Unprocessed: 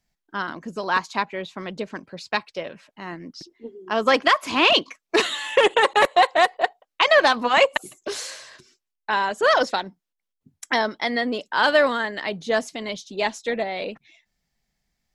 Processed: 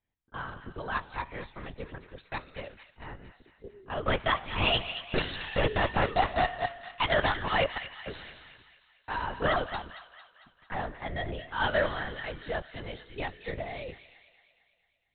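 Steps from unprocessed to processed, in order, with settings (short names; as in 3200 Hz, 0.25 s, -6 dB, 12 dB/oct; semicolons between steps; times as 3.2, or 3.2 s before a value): 9.77–11.07 median filter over 15 samples; in parallel at -2 dB: level quantiser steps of 18 dB; on the sum: soft clip -4.5 dBFS, distortion -20 dB; resonator 140 Hz, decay 1.2 s, harmonics odd, mix 70%; LPC vocoder at 8 kHz whisper; on a send: thin delay 0.226 s, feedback 54%, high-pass 1500 Hz, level -10 dB; on the sum: gain -2 dB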